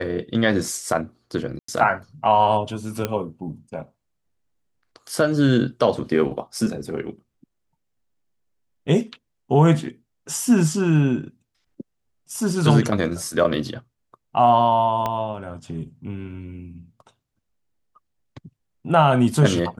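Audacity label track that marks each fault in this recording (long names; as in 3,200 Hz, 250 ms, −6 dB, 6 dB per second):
1.590000	1.680000	drop-out 94 ms
3.050000	3.050000	click −9 dBFS
15.060000	15.060000	click −11 dBFS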